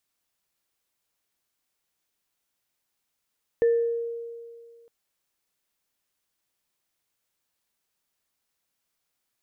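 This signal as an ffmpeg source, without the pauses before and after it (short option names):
-f lavfi -i "aevalsrc='0.158*pow(10,-3*t/2.08)*sin(2*PI*466*t)+0.0158*pow(10,-3*t/0.56)*sin(2*PI*1770*t)':d=1.26:s=44100"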